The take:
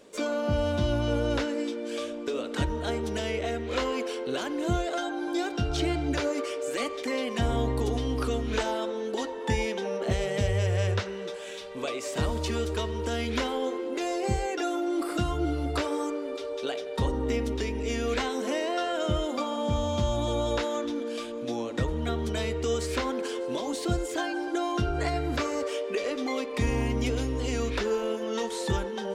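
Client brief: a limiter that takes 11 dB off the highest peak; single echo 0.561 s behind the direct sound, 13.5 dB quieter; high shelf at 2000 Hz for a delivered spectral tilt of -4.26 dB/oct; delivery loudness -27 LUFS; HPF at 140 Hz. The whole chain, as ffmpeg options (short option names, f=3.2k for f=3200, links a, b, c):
-af "highpass=140,highshelf=f=2k:g=-3,alimiter=level_in=2dB:limit=-24dB:level=0:latency=1,volume=-2dB,aecho=1:1:561:0.211,volume=7.5dB"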